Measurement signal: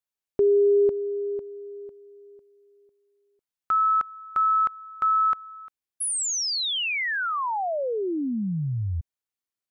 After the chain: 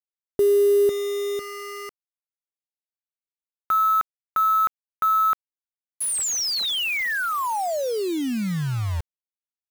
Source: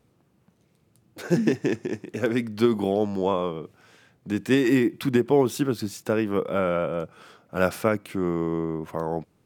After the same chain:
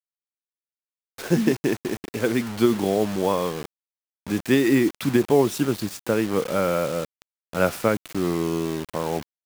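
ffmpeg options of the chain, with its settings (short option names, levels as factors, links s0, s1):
-af "acrusher=bits=5:mix=0:aa=0.000001,volume=1.19"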